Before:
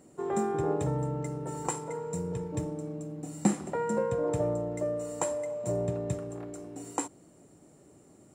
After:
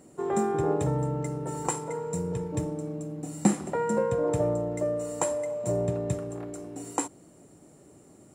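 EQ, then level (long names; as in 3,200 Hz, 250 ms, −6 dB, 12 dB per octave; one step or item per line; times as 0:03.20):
parametric band 11,000 Hz +6.5 dB 0.23 octaves
+3.0 dB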